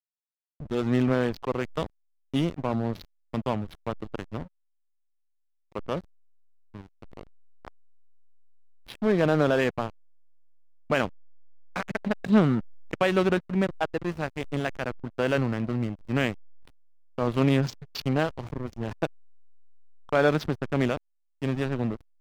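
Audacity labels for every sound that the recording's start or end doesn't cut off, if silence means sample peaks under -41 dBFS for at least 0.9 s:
5.750000	7.680000	sound
8.880000	9.900000	sound
10.900000	19.070000	sound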